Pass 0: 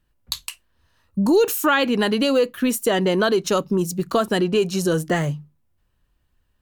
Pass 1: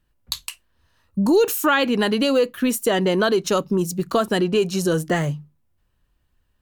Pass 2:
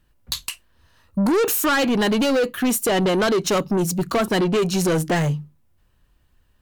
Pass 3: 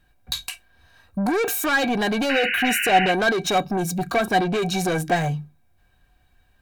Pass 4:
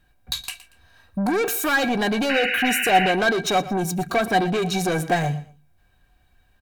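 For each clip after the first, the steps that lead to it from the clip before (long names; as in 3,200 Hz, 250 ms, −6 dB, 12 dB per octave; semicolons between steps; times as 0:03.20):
no processing that can be heard
soft clipping −22 dBFS, distortion −9 dB; level +6 dB
brickwall limiter −20.5 dBFS, peak gain reduction 4.5 dB; hollow resonant body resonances 740/1,600/2,300/3,800 Hz, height 18 dB, ringing for 85 ms; sound drawn into the spectrogram noise, 0:02.29–0:03.12, 1,400–3,000 Hz −25 dBFS
repeating echo 117 ms, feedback 25%, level −16.5 dB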